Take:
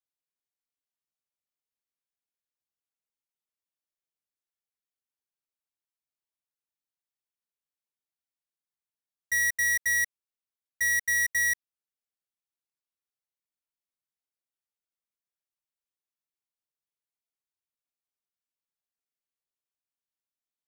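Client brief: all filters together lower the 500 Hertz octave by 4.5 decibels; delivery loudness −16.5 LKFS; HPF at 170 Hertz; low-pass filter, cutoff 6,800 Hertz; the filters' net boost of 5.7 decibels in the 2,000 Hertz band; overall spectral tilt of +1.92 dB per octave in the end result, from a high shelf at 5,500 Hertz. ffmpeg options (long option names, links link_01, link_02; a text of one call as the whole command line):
ffmpeg -i in.wav -af "highpass=170,lowpass=6800,equalizer=frequency=500:width_type=o:gain=-6,equalizer=frequency=2000:width_type=o:gain=5.5,highshelf=frequency=5500:gain=5.5,volume=4dB" out.wav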